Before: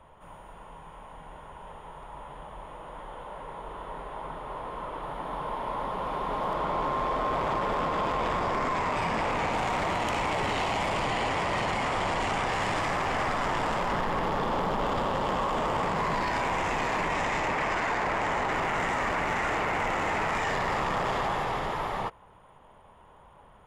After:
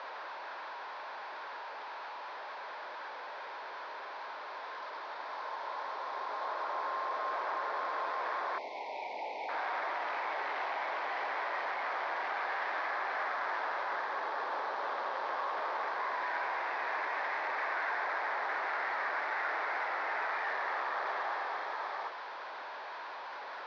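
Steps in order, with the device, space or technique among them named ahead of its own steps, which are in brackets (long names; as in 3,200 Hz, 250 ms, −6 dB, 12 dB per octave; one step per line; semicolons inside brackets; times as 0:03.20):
digital answering machine (band-pass filter 320–3,400 Hz; linear delta modulator 32 kbit/s, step −30.5 dBFS; loudspeaker in its box 390–4,300 Hz, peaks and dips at 480 Hz −3 dB, 1,600 Hz +7 dB, 2,900 Hz −8 dB)
0:08.58–0:09.49: elliptic band-stop filter 890–2,200 Hz, stop band 40 dB
bass and treble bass −13 dB, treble −3 dB
level −6.5 dB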